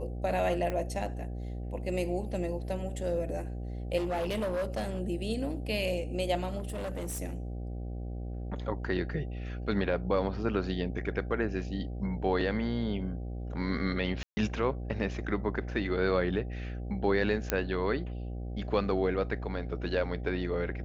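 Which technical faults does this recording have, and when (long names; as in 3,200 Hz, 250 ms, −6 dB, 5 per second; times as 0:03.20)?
mains buzz 60 Hz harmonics 13 −37 dBFS
0:00.70: click −21 dBFS
0:03.97–0:05.01: clipping −28 dBFS
0:06.58–0:07.20: clipping −32 dBFS
0:14.23–0:14.37: drop-out 140 ms
0:17.50: click −11 dBFS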